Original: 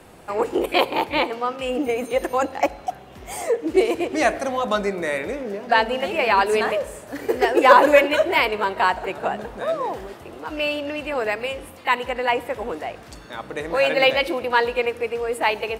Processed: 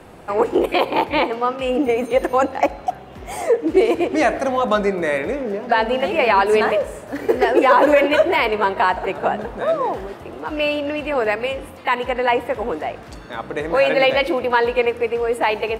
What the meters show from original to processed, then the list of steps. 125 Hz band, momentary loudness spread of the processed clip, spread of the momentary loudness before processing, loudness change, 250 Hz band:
+5.0 dB, 12 LU, 14 LU, +2.5 dB, +4.5 dB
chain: peak limiter -9 dBFS, peak gain reduction 7.5 dB; treble shelf 3.4 kHz -8 dB; trim +5 dB

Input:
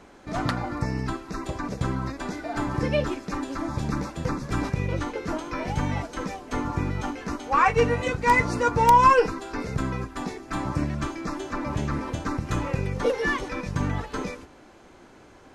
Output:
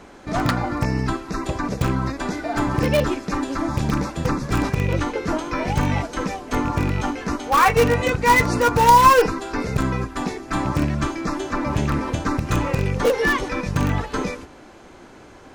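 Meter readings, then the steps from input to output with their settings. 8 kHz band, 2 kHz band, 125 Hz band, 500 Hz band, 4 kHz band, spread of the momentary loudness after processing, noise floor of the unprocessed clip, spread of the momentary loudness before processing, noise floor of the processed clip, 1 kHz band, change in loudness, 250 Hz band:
+8.5 dB, +5.0 dB, +5.5 dB, +5.0 dB, +7.5 dB, 10 LU, -51 dBFS, 12 LU, -45 dBFS, +4.5 dB, +5.0 dB, +6.0 dB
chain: rattle on loud lows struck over -25 dBFS, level -30 dBFS; in parallel at -11 dB: integer overflow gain 16.5 dB; on the sum: trim +4 dB

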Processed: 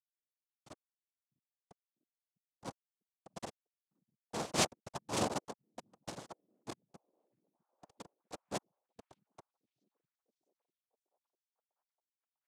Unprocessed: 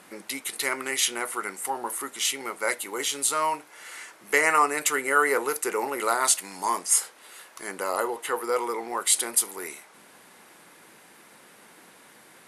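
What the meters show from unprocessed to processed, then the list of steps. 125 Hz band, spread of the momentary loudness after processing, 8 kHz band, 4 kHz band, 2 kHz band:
no reading, 23 LU, -21.0 dB, -14.0 dB, -22.5 dB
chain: median filter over 9 samples; in parallel at +1 dB: peak limiter -17.5 dBFS, peak gain reduction 8 dB; on the sum: Chebyshev shaper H 3 -8 dB, 5 -38 dB, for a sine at -5.5 dBFS; Schmitt trigger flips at -28.5 dBFS; noise-vocoded speech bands 2; on a send: repeats whose band climbs or falls 649 ms, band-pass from 160 Hz, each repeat 0.7 oct, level -11.5 dB; on the sum: upward expansion 2.5:1, over -56 dBFS; trim +11 dB

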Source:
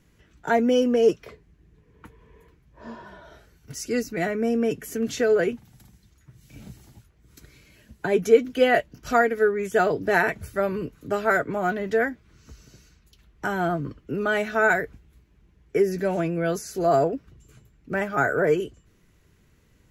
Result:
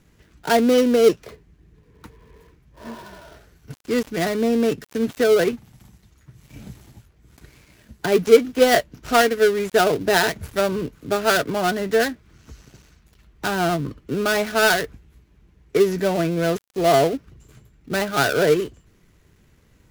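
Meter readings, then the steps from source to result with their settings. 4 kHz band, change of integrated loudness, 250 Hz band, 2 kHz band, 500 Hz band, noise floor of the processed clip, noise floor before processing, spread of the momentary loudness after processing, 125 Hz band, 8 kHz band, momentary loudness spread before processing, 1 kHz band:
+11.5 dB, +3.5 dB, +4.0 dB, +2.0 dB, +3.5 dB, -58 dBFS, -61 dBFS, 13 LU, +4.0 dB, +8.5 dB, 13 LU, +3.0 dB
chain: dead-time distortion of 0.16 ms; trim +4 dB

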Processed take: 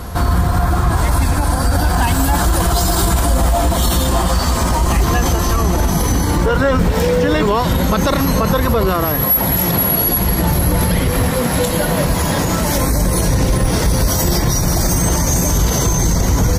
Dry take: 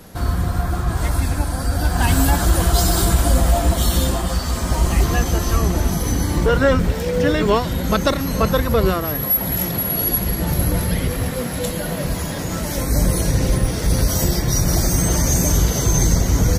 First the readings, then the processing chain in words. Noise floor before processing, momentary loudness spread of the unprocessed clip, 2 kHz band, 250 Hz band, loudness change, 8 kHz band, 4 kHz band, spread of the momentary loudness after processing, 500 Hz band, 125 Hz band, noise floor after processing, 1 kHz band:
-25 dBFS, 6 LU, +4.0 dB, +4.0 dB, +3.5 dB, +3.5 dB, +3.5 dB, 3 LU, +3.5 dB, +3.0 dB, -17 dBFS, +6.5 dB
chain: peaking EQ 960 Hz +5.5 dB 0.63 oct; peak limiter -15 dBFS, peak gain reduction 11.5 dB; on a send: reverse echo 203 ms -15.5 dB; on the sum: trim +8.5 dB

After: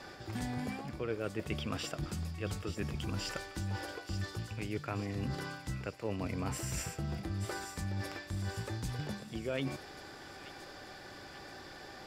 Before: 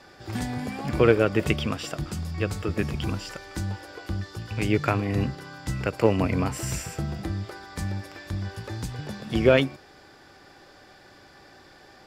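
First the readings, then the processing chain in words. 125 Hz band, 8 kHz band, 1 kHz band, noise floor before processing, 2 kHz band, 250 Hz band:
-9.5 dB, -5.5 dB, -10.5 dB, -52 dBFS, -10.5 dB, -11.5 dB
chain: reverse; compression 6:1, threshold -37 dBFS, peak gain reduction 22.5 dB; reverse; feedback echo behind a high-pass 882 ms, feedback 48%, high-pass 3.2 kHz, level -8 dB; trim +2 dB

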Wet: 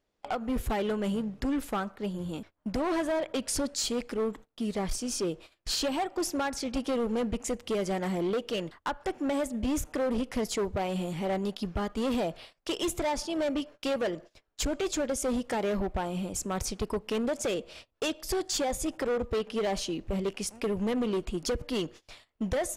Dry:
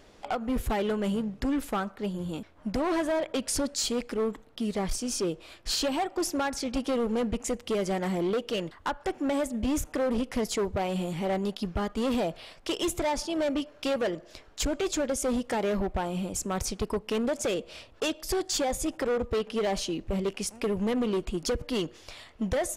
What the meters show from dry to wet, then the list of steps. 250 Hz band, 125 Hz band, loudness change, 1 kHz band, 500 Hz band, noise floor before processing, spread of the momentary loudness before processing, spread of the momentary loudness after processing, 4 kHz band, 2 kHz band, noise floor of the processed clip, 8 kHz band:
-1.5 dB, -1.5 dB, -1.5 dB, -1.5 dB, -1.5 dB, -54 dBFS, 5 LU, 5 LU, -1.5 dB, -1.5 dB, -77 dBFS, -1.5 dB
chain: gate -44 dBFS, range -23 dB; trim -1.5 dB

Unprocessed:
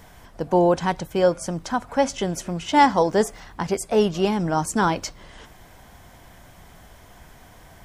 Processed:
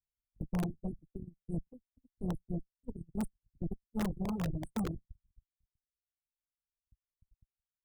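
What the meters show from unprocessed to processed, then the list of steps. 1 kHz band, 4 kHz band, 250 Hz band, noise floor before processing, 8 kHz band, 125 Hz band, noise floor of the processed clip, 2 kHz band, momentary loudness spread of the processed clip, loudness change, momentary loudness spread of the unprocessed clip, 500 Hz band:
-28.5 dB, -24.5 dB, -13.0 dB, -49 dBFS, -24.0 dB, -9.0 dB, under -85 dBFS, -24.5 dB, 12 LU, -17.5 dB, 12 LU, -25.5 dB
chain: delay 107 ms -15 dB; FFT band-reject 260–8100 Hz; in parallel at +3 dB: compression 6:1, threshold -40 dBFS, peak gain reduction 17.5 dB; on the sum: amplifier tone stack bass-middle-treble 10-0-1; gate -40 dBFS, range -57 dB; Chebyshev shaper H 4 -20 dB, 6 -17 dB, 7 -39 dB, 8 -10 dB, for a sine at -30 dBFS; integer overflow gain 31.5 dB; bass shelf 400 Hz +11 dB; reverb removal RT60 1.9 s; trim -1.5 dB

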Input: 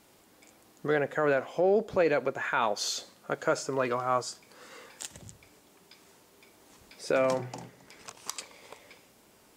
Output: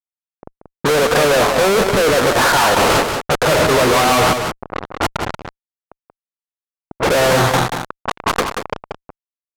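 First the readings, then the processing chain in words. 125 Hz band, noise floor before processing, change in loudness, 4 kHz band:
+19.5 dB, -61 dBFS, +14.5 dB, +20.0 dB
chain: crossover distortion -40.5 dBFS; low-pass 1.3 kHz 24 dB/octave; reverse; compression 8:1, threshold -35 dBFS, peak gain reduction 14 dB; reverse; power-law waveshaper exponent 0.5; fuzz box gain 64 dB, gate -60 dBFS; level-controlled noise filter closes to 330 Hz, open at -15.5 dBFS; on a send: delay 183 ms -6.5 dB

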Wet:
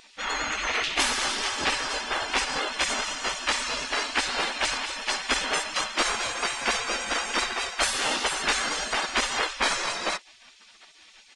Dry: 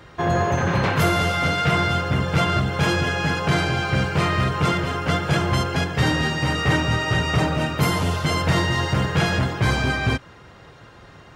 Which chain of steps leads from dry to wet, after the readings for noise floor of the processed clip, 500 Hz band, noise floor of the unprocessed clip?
-54 dBFS, -9.0 dB, -46 dBFS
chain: spectral gate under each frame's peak -20 dB weak; vibrato 10 Hz 41 cents; resampled via 22.05 kHz; trim +7 dB

